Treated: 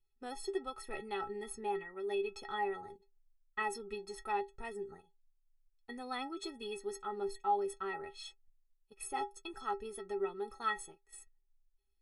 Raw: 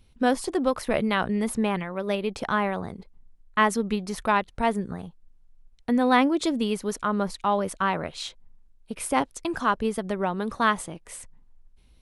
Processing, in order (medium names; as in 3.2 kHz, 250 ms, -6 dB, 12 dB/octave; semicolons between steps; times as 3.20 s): inharmonic resonator 390 Hz, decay 0.21 s, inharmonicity 0.03; gate -53 dBFS, range -11 dB; trim +1 dB